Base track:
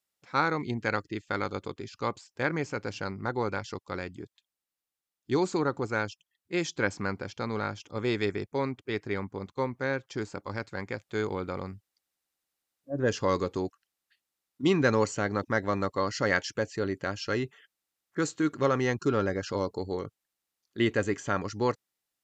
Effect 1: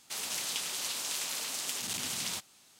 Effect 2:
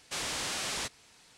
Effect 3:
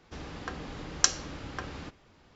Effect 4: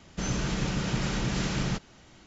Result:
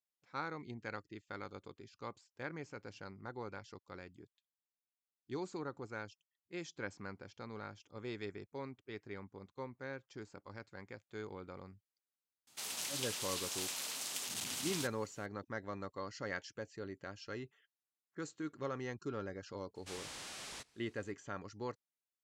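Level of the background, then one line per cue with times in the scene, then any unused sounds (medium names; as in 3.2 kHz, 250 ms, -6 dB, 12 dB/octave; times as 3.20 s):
base track -15 dB
12.47 s: add 1 -5.5 dB
19.75 s: add 2 -13 dB
not used: 3, 4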